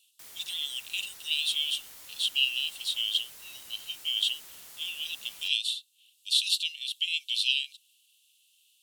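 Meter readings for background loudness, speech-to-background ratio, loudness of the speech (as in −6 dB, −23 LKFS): −45.5 LKFS, 16.5 dB, −29.0 LKFS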